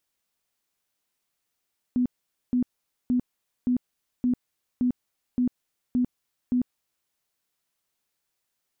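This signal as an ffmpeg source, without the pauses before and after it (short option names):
-f lavfi -i "aevalsrc='0.106*sin(2*PI*248*mod(t,0.57))*lt(mod(t,0.57),24/248)':d=5.13:s=44100"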